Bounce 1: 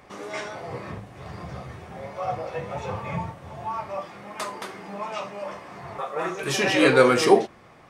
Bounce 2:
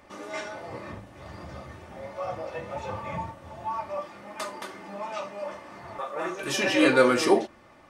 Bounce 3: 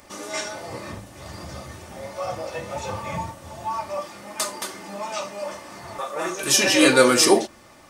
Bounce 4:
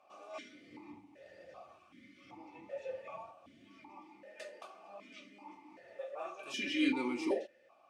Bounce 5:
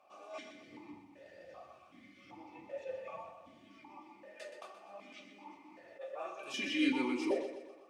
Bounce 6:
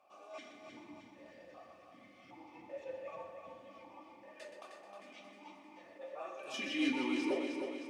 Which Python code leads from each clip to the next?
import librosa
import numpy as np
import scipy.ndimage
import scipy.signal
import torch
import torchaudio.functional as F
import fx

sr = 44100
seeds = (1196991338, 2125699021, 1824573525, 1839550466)

y1 = fx.notch(x, sr, hz=2200.0, q=28.0)
y1 = y1 + 0.46 * np.pad(y1, (int(3.4 * sr / 1000.0), 0))[:len(y1)]
y1 = y1 * librosa.db_to_amplitude(-3.5)
y2 = fx.bass_treble(y1, sr, bass_db=1, treble_db=14)
y2 = y2 * librosa.db_to_amplitude(3.5)
y3 = fx.spec_box(y2, sr, start_s=1.78, length_s=0.53, low_hz=370.0, high_hz=1000.0, gain_db=-12)
y3 = fx.vowel_held(y3, sr, hz=2.6)
y3 = y3 * librosa.db_to_amplitude(-5.5)
y4 = fx.echo_feedback(y3, sr, ms=124, feedback_pct=49, wet_db=-10)
y4 = fx.attack_slew(y4, sr, db_per_s=290.0)
y5 = fx.echo_feedback(y4, sr, ms=310, feedback_pct=52, wet_db=-6.0)
y5 = y5 * librosa.db_to_amplitude(-2.5)